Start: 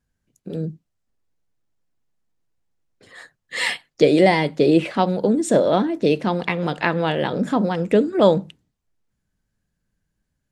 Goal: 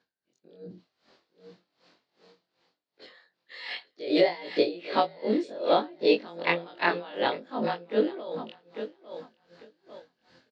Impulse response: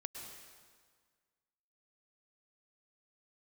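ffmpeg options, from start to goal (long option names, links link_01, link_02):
-af "afftfilt=real='re':imag='-im':win_size=2048:overlap=0.75,highpass=370,aemphasis=mode=reproduction:type=75fm,areverse,acompressor=mode=upward:threshold=-43dB:ratio=2.5,areverse,alimiter=limit=-13.5dB:level=0:latency=1:release=148,lowpass=frequency=4400:width_type=q:width=4.3,aecho=1:1:849|1698|2547:0.178|0.0516|0.015,aeval=exprs='val(0)*pow(10,-21*(0.5-0.5*cos(2*PI*2.6*n/s))/20)':channel_layout=same,volume=4dB"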